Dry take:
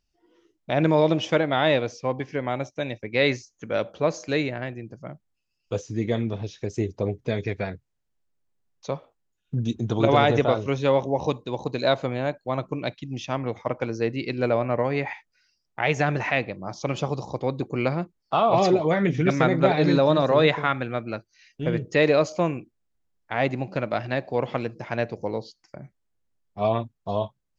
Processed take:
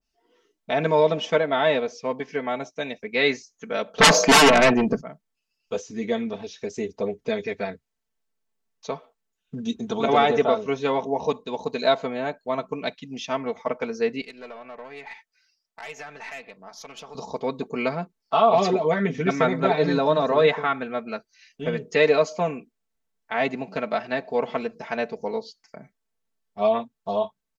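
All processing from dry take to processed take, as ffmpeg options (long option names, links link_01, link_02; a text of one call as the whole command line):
ffmpeg -i in.wav -filter_complex "[0:a]asettb=1/sr,asplit=3[link_01][link_02][link_03];[link_01]atrim=end=3.984[link_04];[link_02]atrim=start=3.98:end=5.01,asetpts=PTS-STARTPTS,afade=type=in:duration=0.004:curve=qsin,afade=type=out:start_time=1.026:duration=0.004:curve=qsin,lowpass=frequency=3700:poles=1,aeval=exprs='0.335*sin(PI/2*8.91*val(0)/0.335)':channel_layout=same[link_05];[link_03]atrim=start=5.006[link_06];[link_04][link_05]acrossfade=duration=0.004:curve1=hsin:curve2=qsin[link_07];[link_07][link_06]acrossfade=duration=0.004:curve1=qsin:curve2=hsin,asettb=1/sr,asplit=3[link_08][link_09][link_10];[link_08]atrim=end=14.214[link_11];[link_09]atrim=start=14.21:end=17.15,asetpts=PTS-STARTPTS,afade=type=in:duration=0.004:curve=qsin,afade=type=out:start_time=2.936:duration=0.004:curve=qsin,acompressor=threshold=-37dB:ratio=2:attack=3.2:release=140:knee=1:detection=peak,lowshelf=frequency=440:gain=-10,aeval=exprs='(tanh(31.6*val(0)+0.45)-tanh(0.45))/31.6':channel_layout=same[link_12];[link_10]atrim=start=17.146[link_13];[link_11][link_12]acrossfade=duration=0.004:curve1=hsin:curve2=qsin[link_14];[link_14][link_13]acrossfade=duration=0.004:curve1=qsin:curve2=hsin,lowshelf=frequency=220:gain=-10,aecho=1:1:4.5:0.84,adynamicequalizer=threshold=0.02:dfrequency=1600:dqfactor=0.7:tfrequency=1600:tqfactor=0.7:attack=5:release=100:ratio=0.375:range=2.5:mode=cutabove:tftype=highshelf" out.wav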